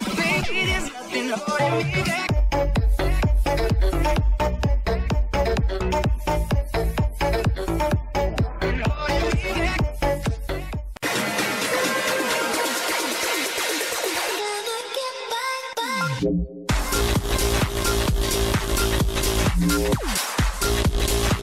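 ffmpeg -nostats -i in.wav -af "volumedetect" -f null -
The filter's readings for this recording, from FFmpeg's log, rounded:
mean_volume: -22.2 dB
max_volume: -13.2 dB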